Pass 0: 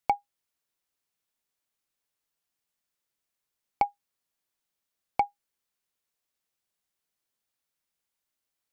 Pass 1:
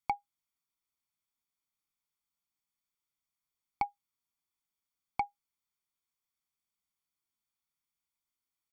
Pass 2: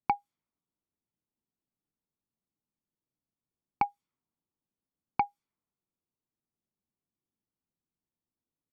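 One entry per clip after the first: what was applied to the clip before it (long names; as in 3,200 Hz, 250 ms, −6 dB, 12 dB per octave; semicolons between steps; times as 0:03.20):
comb filter 0.9 ms, depth 70%; level −8 dB
parametric band 220 Hz +8.5 dB 2.6 octaves; low-pass that shuts in the quiet parts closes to 630 Hz, open at −34 dBFS; level +2.5 dB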